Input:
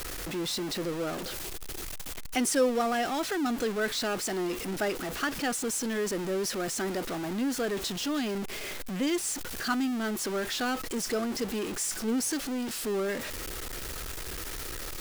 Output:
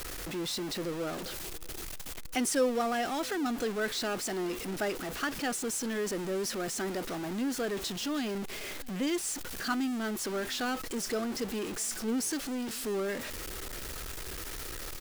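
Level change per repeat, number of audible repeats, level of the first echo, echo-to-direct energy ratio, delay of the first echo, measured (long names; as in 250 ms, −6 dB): −9.5 dB, 2, −24.0 dB, −23.5 dB, 639 ms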